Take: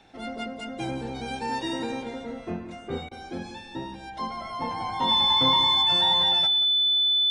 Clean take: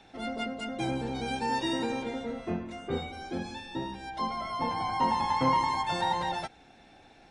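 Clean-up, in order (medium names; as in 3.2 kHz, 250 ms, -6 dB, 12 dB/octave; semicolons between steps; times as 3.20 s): band-stop 3.5 kHz, Q 30; interpolate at 3.09 s, 22 ms; inverse comb 181 ms -15 dB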